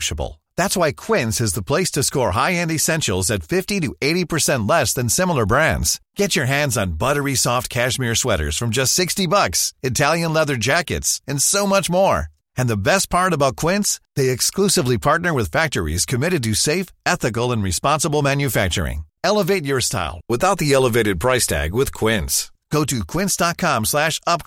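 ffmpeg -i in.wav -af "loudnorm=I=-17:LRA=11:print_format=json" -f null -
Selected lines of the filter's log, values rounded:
"input_i" : "-18.6",
"input_tp" : "-3.3",
"input_lra" : "1.4",
"input_thresh" : "-28.7",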